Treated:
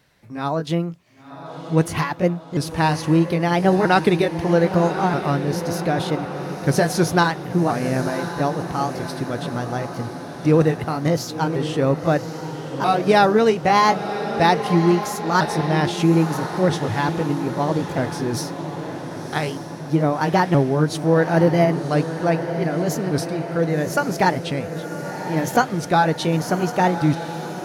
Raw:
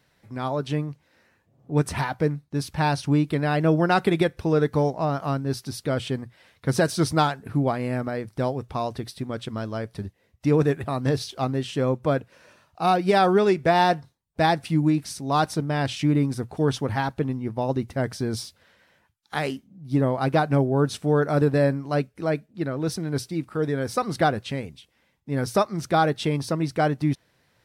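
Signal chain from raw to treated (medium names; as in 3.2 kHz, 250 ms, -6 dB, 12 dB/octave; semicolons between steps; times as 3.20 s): sawtooth pitch modulation +3.5 st, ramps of 1284 ms; echo that smears into a reverb 1069 ms, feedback 60%, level -9.5 dB; trim +4.5 dB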